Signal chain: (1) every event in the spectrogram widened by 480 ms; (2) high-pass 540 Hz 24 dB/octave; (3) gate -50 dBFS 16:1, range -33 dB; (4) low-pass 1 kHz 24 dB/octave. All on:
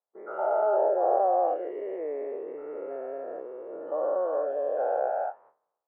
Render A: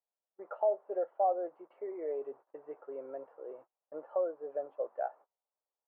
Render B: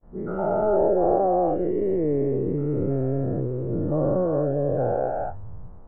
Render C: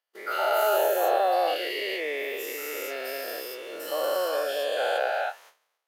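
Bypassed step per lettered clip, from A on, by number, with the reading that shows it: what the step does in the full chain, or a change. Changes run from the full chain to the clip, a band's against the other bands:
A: 1, momentary loudness spread change +3 LU; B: 2, crest factor change -1.5 dB; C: 4, 2 kHz band +17.0 dB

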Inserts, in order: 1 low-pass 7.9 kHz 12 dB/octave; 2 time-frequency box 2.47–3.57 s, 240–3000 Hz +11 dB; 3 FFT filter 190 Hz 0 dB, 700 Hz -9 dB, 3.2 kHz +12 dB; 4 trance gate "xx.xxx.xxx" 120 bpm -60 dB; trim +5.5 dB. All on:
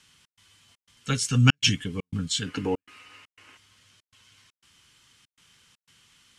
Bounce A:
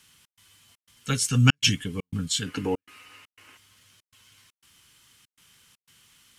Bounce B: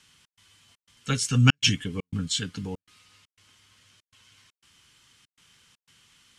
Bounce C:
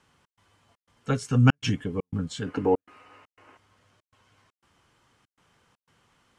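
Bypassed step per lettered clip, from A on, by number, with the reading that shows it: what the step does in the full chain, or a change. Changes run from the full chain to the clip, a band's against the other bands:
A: 1, 8 kHz band +2.0 dB; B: 2, 500 Hz band -5.0 dB; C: 3, 8 kHz band -13.0 dB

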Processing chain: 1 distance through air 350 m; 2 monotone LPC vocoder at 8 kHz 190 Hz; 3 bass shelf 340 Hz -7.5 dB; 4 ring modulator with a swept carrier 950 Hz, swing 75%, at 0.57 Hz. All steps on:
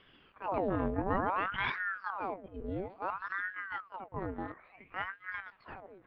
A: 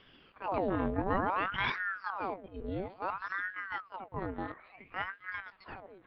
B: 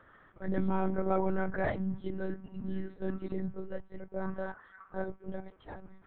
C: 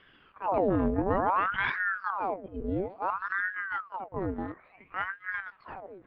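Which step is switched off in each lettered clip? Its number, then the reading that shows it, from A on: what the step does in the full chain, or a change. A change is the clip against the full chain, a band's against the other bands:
1, 4 kHz band +2.5 dB; 4, momentary loudness spread change +2 LU; 3, 4 kHz band -5.5 dB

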